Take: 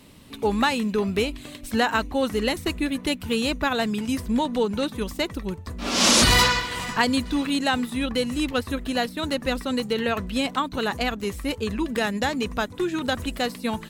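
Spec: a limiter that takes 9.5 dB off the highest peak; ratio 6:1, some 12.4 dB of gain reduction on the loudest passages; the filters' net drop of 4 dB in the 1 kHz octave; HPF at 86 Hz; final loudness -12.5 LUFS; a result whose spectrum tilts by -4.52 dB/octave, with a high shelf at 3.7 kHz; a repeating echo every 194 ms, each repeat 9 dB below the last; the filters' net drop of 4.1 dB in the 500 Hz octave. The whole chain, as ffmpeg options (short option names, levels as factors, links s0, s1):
-af "highpass=86,equalizer=f=500:t=o:g=-4,equalizer=f=1000:t=o:g=-3.5,highshelf=f=3700:g=-4.5,acompressor=threshold=0.0316:ratio=6,alimiter=level_in=1.58:limit=0.0631:level=0:latency=1,volume=0.631,aecho=1:1:194|388|582|776:0.355|0.124|0.0435|0.0152,volume=15.8"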